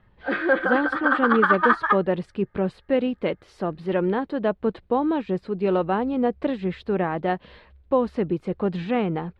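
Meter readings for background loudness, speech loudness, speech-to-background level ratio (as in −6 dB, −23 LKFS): −22.0 LKFS, −25.0 LKFS, −3.0 dB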